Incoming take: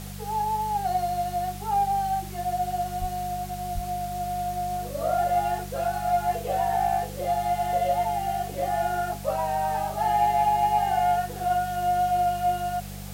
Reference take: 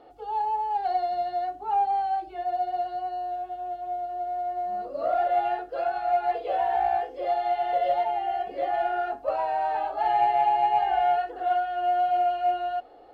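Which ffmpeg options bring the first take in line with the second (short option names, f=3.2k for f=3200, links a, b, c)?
-filter_complex "[0:a]bandreject=f=49.3:t=h:w=4,bandreject=f=98.6:t=h:w=4,bandreject=f=147.9:t=h:w=4,bandreject=f=197.2:t=h:w=4,asplit=3[a][b][c];[a]afade=t=out:st=3:d=0.02[d];[b]highpass=f=140:w=0.5412,highpass=f=140:w=1.3066,afade=t=in:st=3:d=0.02,afade=t=out:st=3.12:d=0.02[e];[c]afade=t=in:st=3.12:d=0.02[f];[d][e][f]amix=inputs=3:normalize=0,asplit=3[g][h][i];[g]afade=t=out:st=3.74:d=0.02[j];[h]highpass=f=140:w=0.5412,highpass=f=140:w=1.3066,afade=t=in:st=3.74:d=0.02,afade=t=out:st=3.86:d=0.02[k];[i]afade=t=in:st=3.86:d=0.02[l];[j][k][l]amix=inputs=3:normalize=0,afwtdn=0.0063"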